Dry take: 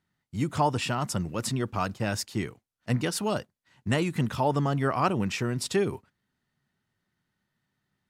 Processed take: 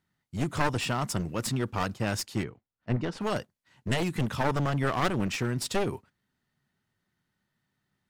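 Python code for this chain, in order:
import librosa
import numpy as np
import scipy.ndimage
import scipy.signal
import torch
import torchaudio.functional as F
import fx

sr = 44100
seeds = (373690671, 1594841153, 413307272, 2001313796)

y = np.minimum(x, 2.0 * 10.0 ** (-27.0 / 20.0) - x)
y = fx.spacing_loss(y, sr, db_at_10k=25, at=(2.42, 3.2), fade=0.02)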